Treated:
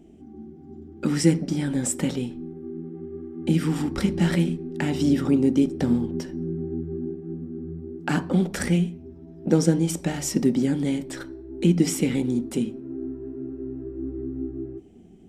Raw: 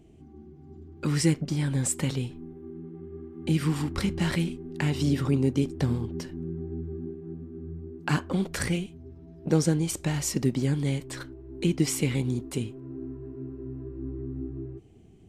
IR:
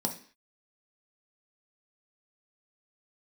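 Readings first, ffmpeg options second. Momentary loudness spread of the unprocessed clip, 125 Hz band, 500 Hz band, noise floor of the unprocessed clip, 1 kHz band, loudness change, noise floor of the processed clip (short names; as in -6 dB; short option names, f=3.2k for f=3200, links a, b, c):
17 LU, +0.5 dB, +5.0 dB, -50 dBFS, +2.5 dB, +3.5 dB, -46 dBFS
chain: -filter_complex "[0:a]asplit=2[a][b];[1:a]atrim=start_sample=2205,highshelf=f=4.9k:g=-12[c];[b][c]afir=irnorm=-1:irlink=0,volume=-9.5dB[d];[a][d]amix=inputs=2:normalize=0"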